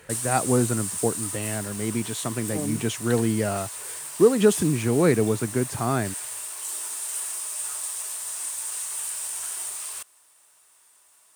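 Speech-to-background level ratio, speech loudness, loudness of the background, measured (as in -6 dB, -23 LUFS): 5.5 dB, -24.5 LUFS, -30.0 LUFS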